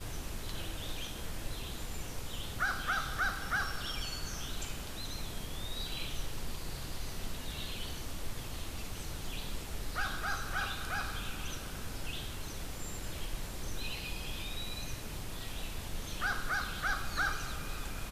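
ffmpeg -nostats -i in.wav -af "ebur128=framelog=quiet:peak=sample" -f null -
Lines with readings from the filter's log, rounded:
Integrated loudness:
  I:         -38.7 LUFS
  Threshold: -48.7 LUFS
Loudness range:
  LRA:         5.0 LU
  Threshold: -58.8 LUFS
  LRA low:   -41.2 LUFS
  LRA high:  -36.2 LUFS
Sample peak:
  Peak:      -19.9 dBFS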